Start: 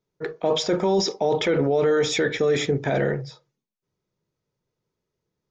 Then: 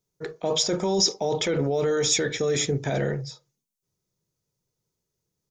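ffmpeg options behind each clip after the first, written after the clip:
ffmpeg -i in.wav -af "firequalizer=gain_entry='entry(130,0);entry(260,-4);entry(1800,-5);entry(6600,9)':delay=0.05:min_phase=1" out.wav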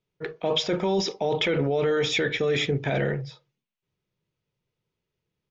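ffmpeg -i in.wav -af "lowpass=frequency=2800:width_type=q:width=2.2" out.wav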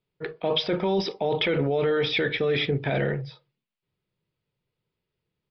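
ffmpeg -i in.wav -af "aresample=11025,aresample=44100" out.wav

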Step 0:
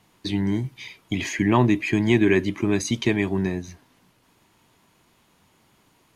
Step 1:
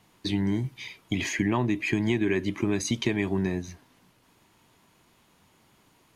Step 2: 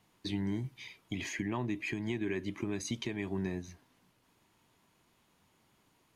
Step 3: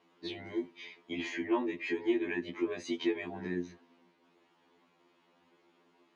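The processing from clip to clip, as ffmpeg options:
ffmpeg -i in.wav -af "acompressor=threshold=-20dB:ratio=6,volume=-1dB" out.wav
ffmpeg -i in.wav -af "alimiter=limit=-15.5dB:level=0:latency=1:release=345,volume=-8dB" out.wav
ffmpeg -i in.wav -af "highpass=260,lowpass=3600,equalizer=frequency=350:width=1.3:gain=7.5,afftfilt=real='re*2*eq(mod(b,4),0)':imag='im*2*eq(mod(b,4),0)':win_size=2048:overlap=0.75,volume=4.5dB" out.wav

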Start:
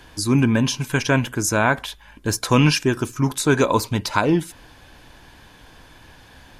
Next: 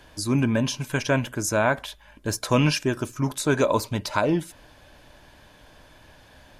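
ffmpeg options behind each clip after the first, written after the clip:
ffmpeg -i in.wav -af "equalizer=frequency=600:width_type=o:width=0.21:gain=10.5,volume=-5dB" out.wav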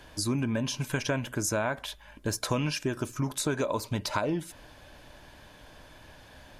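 ffmpeg -i in.wav -af "acompressor=threshold=-26dB:ratio=5" out.wav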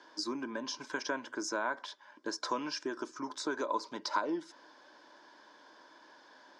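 ffmpeg -i in.wav -af "highpass=frequency=270:width=0.5412,highpass=frequency=270:width=1.3066,equalizer=frequency=330:width_type=q:width=4:gain=5,equalizer=frequency=690:width_type=q:width=4:gain=-3,equalizer=frequency=990:width_type=q:width=4:gain=9,equalizer=frequency=1500:width_type=q:width=4:gain=5,equalizer=frequency=2600:width_type=q:width=4:gain=-9,equalizer=frequency=5200:width_type=q:width=4:gain=7,lowpass=frequency=6400:width=0.5412,lowpass=frequency=6400:width=1.3066,volume=-7dB" out.wav

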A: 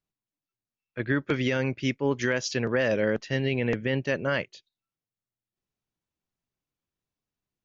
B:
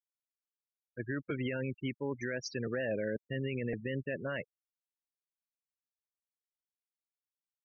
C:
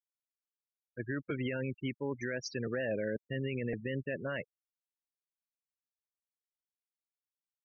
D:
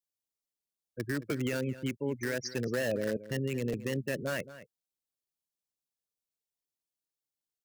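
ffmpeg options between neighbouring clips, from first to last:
ffmpeg -i in.wav -af "afftfilt=real='re*gte(hypot(re,im),0.0562)':imag='im*gte(hypot(re,im),0.0562)':win_size=1024:overlap=0.75,alimiter=limit=-18.5dB:level=0:latency=1:release=28,volume=-7.5dB" out.wav
ffmpeg -i in.wav -af anull out.wav
ffmpeg -i in.wav -filter_complex "[0:a]acrossover=split=240|910|2800[link_01][link_02][link_03][link_04];[link_03]acrusher=bits=6:mix=0:aa=0.000001[link_05];[link_01][link_02][link_05][link_04]amix=inputs=4:normalize=0,asplit=2[link_06][link_07];[link_07]adelay=221.6,volume=-15dB,highshelf=frequency=4000:gain=-4.99[link_08];[link_06][link_08]amix=inputs=2:normalize=0,volume=3dB" out.wav

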